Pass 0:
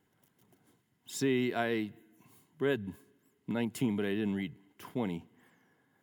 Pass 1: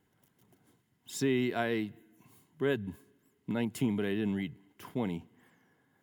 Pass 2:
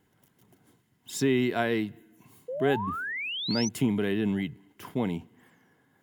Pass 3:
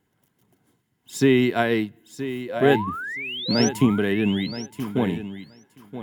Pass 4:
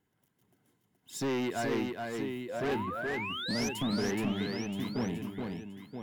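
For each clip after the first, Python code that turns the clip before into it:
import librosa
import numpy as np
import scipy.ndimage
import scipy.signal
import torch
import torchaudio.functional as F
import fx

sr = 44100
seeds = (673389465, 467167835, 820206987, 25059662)

y1 = fx.low_shelf(x, sr, hz=83.0, db=6.5)
y2 = fx.spec_paint(y1, sr, seeds[0], shape='rise', start_s=2.48, length_s=1.21, low_hz=480.0, high_hz=6200.0, level_db=-38.0)
y2 = y2 * librosa.db_to_amplitude(4.5)
y3 = fx.echo_feedback(y2, sr, ms=974, feedback_pct=19, wet_db=-8.0)
y3 = fx.upward_expand(y3, sr, threshold_db=-43.0, expansion=1.5)
y3 = y3 * librosa.db_to_amplitude(8.0)
y4 = 10.0 ** (-21.0 / 20.0) * np.tanh(y3 / 10.0 ** (-21.0 / 20.0))
y4 = y4 + 10.0 ** (-4.0 / 20.0) * np.pad(y4, (int(423 * sr / 1000.0), 0))[:len(y4)]
y4 = y4 * librosa.db_to_amplitude(-7.0)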